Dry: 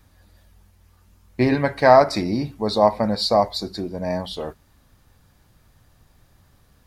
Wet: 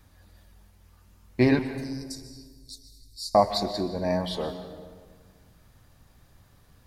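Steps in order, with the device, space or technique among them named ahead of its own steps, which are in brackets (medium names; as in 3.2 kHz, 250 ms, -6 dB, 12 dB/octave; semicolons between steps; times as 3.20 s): 1.59–3.35 s: inverse Chebyshev band-stop 240–1300 Hz, stop band 80 dB; saturated reverb return (on a send at -9 dB: reverberation RT60 1.6 s, pre-delay 119 ms + saturation -15 dBFS, distortion -14 dB); on the sum: trim -1.5 dB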